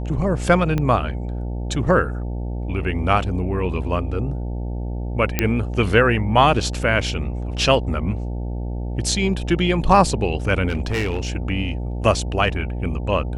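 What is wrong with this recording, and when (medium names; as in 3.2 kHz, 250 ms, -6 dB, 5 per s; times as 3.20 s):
buzz 60 Hz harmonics 15 -26 dBFS
0.78 s: pop -11 dBFS
5.39 s: pop -2 dBFS
10.68–11.27 s: clipped -18 dBFS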